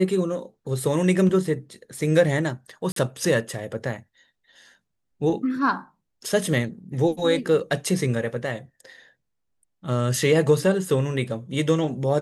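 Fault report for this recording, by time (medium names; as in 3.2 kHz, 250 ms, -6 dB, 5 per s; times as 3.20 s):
2.92–2.96 s: dropout 43 ms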